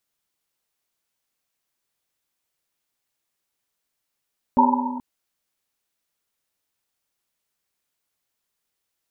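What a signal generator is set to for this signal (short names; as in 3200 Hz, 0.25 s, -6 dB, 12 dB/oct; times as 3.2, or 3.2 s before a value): Risset drum length 0.43 s, pitch 250 Hz, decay 2.10 s, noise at 920 Hz, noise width 130 Hz, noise 55%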